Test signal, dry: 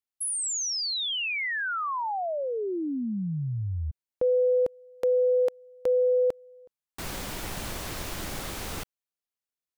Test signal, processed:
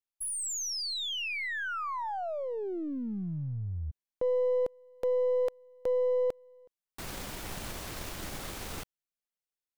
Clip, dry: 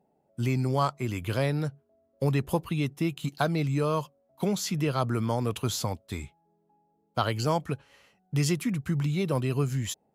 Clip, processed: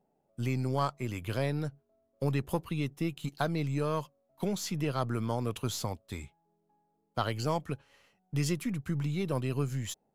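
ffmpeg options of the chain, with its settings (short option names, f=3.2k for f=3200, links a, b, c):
-af "aeval=exprs='if(lt(val(0),0),0.708*val(0),val(0))':c=same,volume=-3.5dB"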